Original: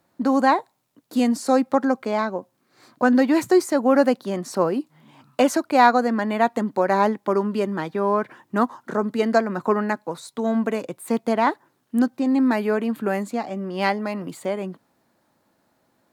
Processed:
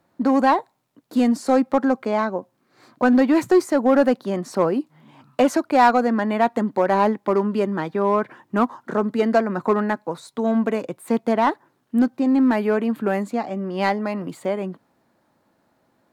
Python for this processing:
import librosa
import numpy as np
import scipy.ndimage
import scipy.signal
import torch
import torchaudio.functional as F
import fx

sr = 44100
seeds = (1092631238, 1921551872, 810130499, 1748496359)

p1 = fx.high_shelf(x, sr, hz=3700.0, db=-7.0)
p2 = 10.0 ** (-15.0 / 20.0) * (np.abs((p1 / 10.0 ** (-15.0 / 20.0) + 3.0) % 4.0 - 2.0) - 1.0)
y = p1 + (p2 * 10.0 ** (-11.5 / 20.0))